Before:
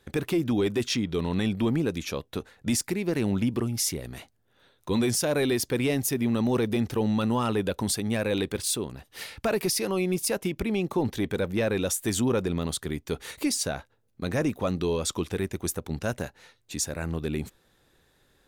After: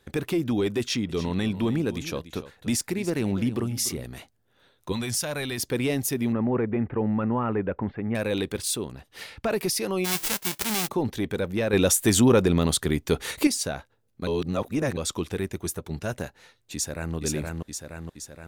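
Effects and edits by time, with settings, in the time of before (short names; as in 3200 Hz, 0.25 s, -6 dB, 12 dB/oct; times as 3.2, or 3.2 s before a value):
0.8–4.04 echo 0.291 s -14 dB
4.92–5.58 bell 360 Hz -10.5 dB 1.6 oct
6.32–8.15 steep low-pass 2200 Hz
8.9–9.49 LPF 8800 Hz -> 4000 Hz 6 dB/oct
10.04–10.87 spectral whitening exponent 0.1
11.73–13.47 gain +7 dB
14.27–14.97 reverse
15.56–16.15 notch comb 260 Hz
16.74–17.15 echo throw 0.47 s, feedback 60%, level -2 dB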